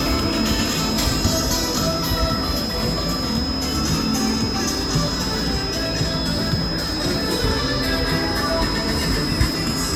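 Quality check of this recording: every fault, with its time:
whine 5.1 kHz -26 dBFS

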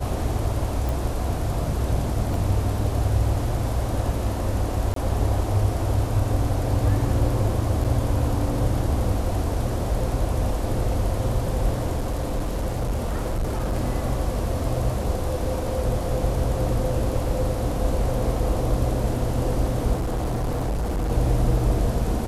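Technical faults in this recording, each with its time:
0.89 s: pop
2.34 s: dropout 2.1 ms
4.94–4.96 s: dropout 23 ms
7.84–7.85 s: dropout 6.8 ms
11.96–13.75 s: clipped -20.5 dBFS
19.94–21.11 s: clipped -21.5 dBFS

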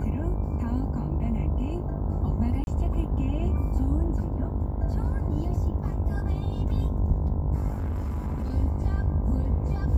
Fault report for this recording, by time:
buzz 50 Hz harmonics 21 -31 dBFS
2.64–2.67 s: dropout 31 ms
7.73–8.54 s: clipped -25.5 dBFS

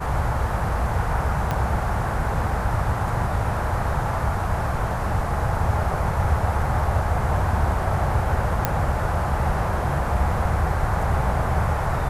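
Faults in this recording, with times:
1.51 s: pop -11 dBFS
8.65 s: pop -5 dBFS

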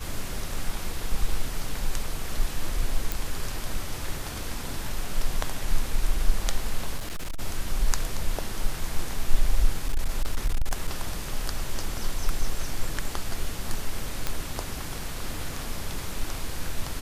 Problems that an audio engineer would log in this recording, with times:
3.12 s: pop
6.97–7.40 s: clipped -27 dBFS
9.88–11.01 s: clipped -18.5 dBFS
14.27 s: pop -11 dBFS

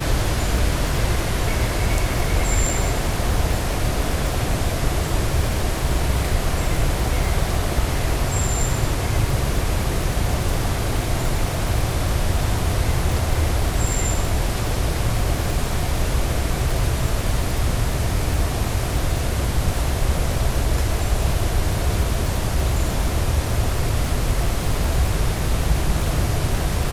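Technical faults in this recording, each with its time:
crackle 64 per s -24 dBFS

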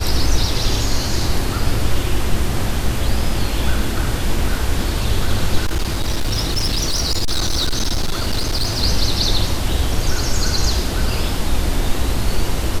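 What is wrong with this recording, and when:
5.65–8.84 s: clipped -14 dBFS

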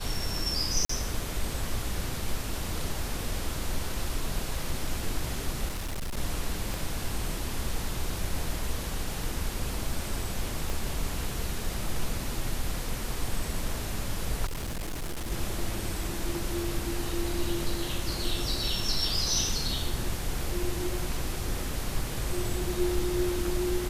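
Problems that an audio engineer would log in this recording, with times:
0.85–0.89 s: dropout 44 ms
5.68–6.18 s: clipped -29.5 dBFS
6.74 s: pop
10.70 s: pop
14.45–15.32 s: clipped -30 dBFS

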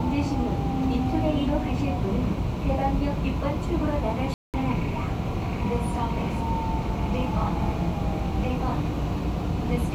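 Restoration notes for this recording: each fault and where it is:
4.34–4.54 s: dropout 198 ms

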